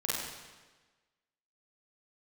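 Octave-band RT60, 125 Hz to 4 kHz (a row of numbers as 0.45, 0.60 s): 1.3, 1.3, 1.3, 1.3, 1.3, 1.2 s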